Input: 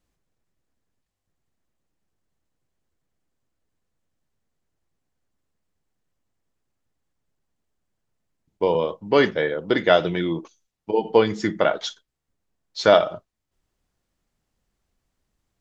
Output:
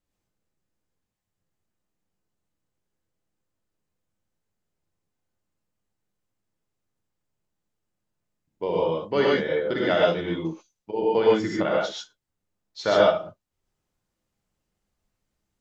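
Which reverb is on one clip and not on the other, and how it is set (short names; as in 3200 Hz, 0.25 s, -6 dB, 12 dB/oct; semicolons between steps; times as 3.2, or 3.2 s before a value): non-linear reverb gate 0.16 s rising, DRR -4.5 dB; gain -8.5 dB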